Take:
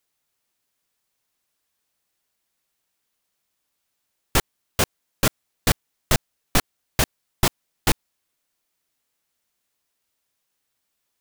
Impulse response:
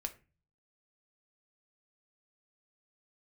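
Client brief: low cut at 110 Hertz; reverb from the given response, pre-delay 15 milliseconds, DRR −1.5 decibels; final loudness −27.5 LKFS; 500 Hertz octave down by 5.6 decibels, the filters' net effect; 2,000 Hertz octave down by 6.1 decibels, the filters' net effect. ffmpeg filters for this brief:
-filter_complex "[0:a]highpass=110,equalizer=frequency=500:width_type=o:gain=-7,equalizer=frequency=2000:width_type=o:gain=-7.5,asplit=2[link_01][link_02];[1:a]atrim=start_sample=2205,adelay=15[link_03];[link_02][link_03]afir=irnorm=-1:irlink=0,volume=2.5dB[link_04];[link_01][link_04]amix=inputs=2:normalize=0,volume=-4dB"

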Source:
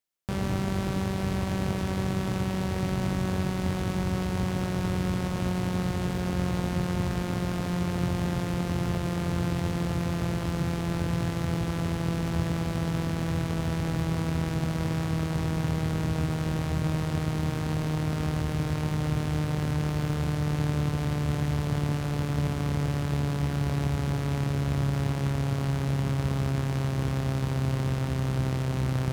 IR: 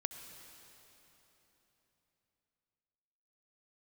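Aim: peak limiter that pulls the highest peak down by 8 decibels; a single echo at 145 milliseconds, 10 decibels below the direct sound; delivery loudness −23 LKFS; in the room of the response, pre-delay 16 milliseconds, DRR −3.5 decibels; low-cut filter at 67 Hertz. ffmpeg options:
-filter_complex "[0:a]highpass=67,alimiter=limit=-23dB:level=0:latency=1,aecho=1:1:145:0.316,asplit=2[link_01][link_02];[1:a]atrim=start_sample=2205,adelay=16[link_03];[link_02][link_03]afir=irnorm=-1:irlink=0,volume=4dB[link_04];[link_01][link_04]amix=inputs=2:normalize=0,volume=4dB"

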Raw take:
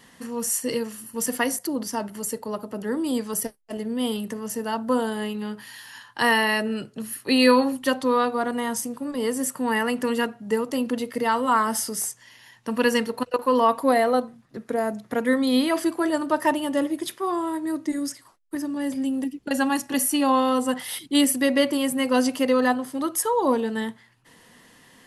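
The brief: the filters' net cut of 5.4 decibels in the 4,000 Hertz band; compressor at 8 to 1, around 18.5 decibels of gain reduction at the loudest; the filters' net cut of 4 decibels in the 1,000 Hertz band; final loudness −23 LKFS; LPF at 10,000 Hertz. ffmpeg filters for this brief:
ffmpeg -i in.wav -af "lowpass=10000,equalizer=frequency=1000:width_type=o:gain=-4.5,equalizer=frequency=4000:width_type=o:gain=-7.5,acompressor=threshold=-33dB:ratio=8,volume=14dB" out.wav

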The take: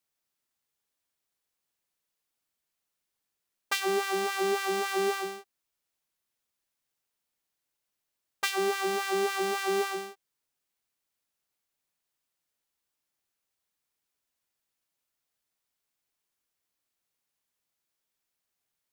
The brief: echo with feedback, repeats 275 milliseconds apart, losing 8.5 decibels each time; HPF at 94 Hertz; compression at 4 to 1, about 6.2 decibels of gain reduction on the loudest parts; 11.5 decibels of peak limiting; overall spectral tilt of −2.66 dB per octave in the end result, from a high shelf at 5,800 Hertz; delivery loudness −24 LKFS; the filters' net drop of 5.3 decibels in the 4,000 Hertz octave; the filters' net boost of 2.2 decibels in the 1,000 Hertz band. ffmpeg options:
ffmpeg -i in.wav -af "highpass=94,equalizer=frequency=1000:width_type=o:gain=3.5,equalizer=frequency=4000:width_type=o:gain=-4,highshelf=frequency=5800:gain=-8,acompressor=threshold=-30dB:ratio=4,alimiter=level_in=5dB:limit=-24dB:level=0:latency=1,volume=-5dB,aecho=1:1:275|550|825|1100:0.376|0.143|0.0543|0.0206,volume=15dB" out.wav

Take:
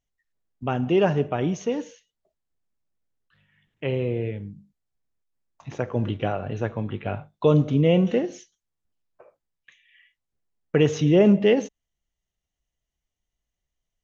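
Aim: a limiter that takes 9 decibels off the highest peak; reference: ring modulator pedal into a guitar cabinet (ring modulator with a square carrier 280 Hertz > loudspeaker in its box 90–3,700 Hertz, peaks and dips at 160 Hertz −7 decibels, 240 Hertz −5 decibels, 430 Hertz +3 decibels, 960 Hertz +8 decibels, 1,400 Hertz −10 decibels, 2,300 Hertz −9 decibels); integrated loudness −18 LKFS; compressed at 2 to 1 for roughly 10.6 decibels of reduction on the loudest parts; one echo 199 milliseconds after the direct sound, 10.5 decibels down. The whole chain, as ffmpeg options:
ffmpeg -i in.wav -af "acompressor=threshold=-33dB:ratio=2,alimiter=limit=-23dB:level=0:latency=1,aecho=1:1:199:0.299,aeval=exprs='val(0)*sgn(sin(2*PI*280*n/s))':channel_layout=same,highpass=90,equalizer=frequency=160:width_type=q:width=4:gain=-7,equalizer=frequency=240:width_type=q:width=4:gain=-5,equalizer=frequency=430:width_type=q:width=4:gain=3,equalizer=frequency=960:width_type=q:width=4:gain=8,equalizer=frequency=1400:width_type=q:width=4:gain=-10,equalizer=frequency=2300:width_type=q:width=4:gain=-9,lowpass=frequency=3700:width=0.5412,lowpass=frequency=3700:width=1.3066,volume=16dB" out.wav

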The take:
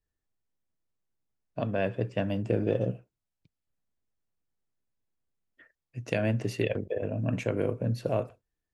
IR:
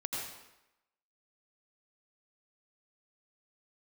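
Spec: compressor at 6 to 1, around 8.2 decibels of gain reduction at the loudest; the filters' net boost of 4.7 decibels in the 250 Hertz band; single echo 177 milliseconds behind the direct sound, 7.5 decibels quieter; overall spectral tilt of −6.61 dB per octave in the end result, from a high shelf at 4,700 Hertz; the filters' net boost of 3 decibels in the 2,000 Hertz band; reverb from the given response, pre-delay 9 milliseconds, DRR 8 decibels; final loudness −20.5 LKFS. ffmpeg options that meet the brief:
-filter_complex "[0:a]equalizer=frequency=250:width_type=o:gain=6,equalizer=frequency=2000:width_type=o:gain=4.5,highshelf=frequency=4700:gain=-3,acompressor=threshold=-29dB:ratio=6,aecho=1:1:177:0.422,asplit=2[link_01][link_02];[1:a]atrim=start_sample=2205,adelay=9[link_03];[link_02][link_03]afir=irnorm=-1:irlink=0,volume=-11dB[link_04];[link_01][link_04]amix=inputs=2:normalize=0,volume=13dB"

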